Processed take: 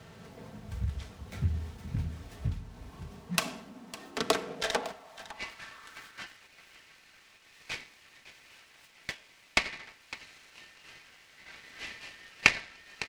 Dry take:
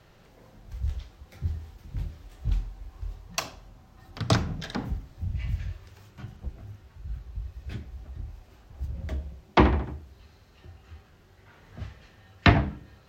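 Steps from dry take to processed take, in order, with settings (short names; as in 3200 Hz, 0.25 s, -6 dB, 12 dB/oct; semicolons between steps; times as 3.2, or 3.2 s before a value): comb 4.5 ms, depth 58%; compressor 6:1, threshold -31 dBFS, peak gain reduction 18 dB; dynamic EQ 2700 Hz, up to +5 dB, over -57 dBFS, Q 1.3; echo 0.556 s -16 dB; high-pass sweep 100 Hz -> 2200 Hz, 2.6–6.53; noise-modulated delay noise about 1800 Hz, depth 0.035 ms; gain +4.5 dB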